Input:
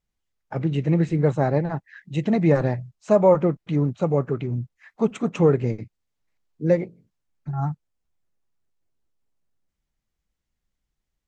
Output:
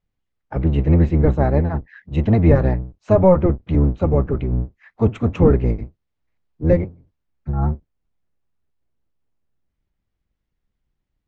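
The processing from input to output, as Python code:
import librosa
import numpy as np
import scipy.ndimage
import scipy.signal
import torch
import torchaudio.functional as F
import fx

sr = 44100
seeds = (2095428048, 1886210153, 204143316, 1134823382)

y = fx.octave_divider(x, sr, octaves=1, level_db=3.0)
y = scipy.signal.sosfilt(scipy.signal.bessel(2, 3100.0, 'lowpass', norm='mag', fs=sr, output='sos'), y)
y = y * librosa.db_to_amplitude(2.0)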